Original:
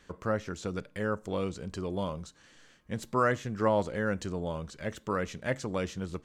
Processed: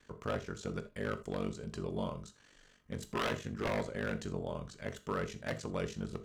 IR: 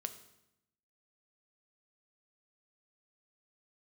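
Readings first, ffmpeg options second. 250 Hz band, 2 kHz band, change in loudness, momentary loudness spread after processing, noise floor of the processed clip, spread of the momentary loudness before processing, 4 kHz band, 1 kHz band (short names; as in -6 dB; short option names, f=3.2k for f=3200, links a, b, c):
-5.5 dB, -5.5 dB, -6.0 dB, 7 LU, -65 dBFS, 10 LU, -1.0 dB, -8.0 dB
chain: -filter_complex "[0:a]aeval=exprs='val(0)*sin(2*PI*24*n/s)':c=same,aeval=exprs='0.0562*(abs(mod(val(0)/0.0562+3,4)-2)-1)':c=same[a];[1:a]atrim=start_sample=2205,atrim=end_sample=3969[b];[a][b]afir=irnorm=-1:irlink=0"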